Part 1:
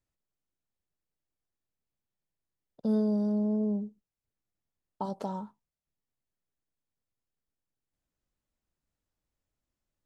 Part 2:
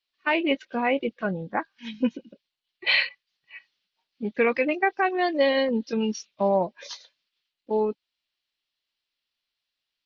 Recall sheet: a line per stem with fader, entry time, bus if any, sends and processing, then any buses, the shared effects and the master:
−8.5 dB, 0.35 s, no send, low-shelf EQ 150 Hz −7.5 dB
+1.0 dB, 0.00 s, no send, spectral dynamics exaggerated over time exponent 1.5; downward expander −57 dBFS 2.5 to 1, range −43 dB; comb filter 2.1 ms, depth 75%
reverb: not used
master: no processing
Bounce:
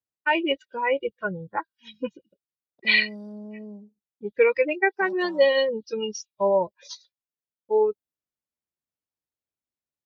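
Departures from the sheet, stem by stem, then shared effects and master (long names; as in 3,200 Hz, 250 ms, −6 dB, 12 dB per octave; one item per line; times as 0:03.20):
stem 1: entry 0.35 s → 0.00 s
master: extra high-pass filter 69 Hz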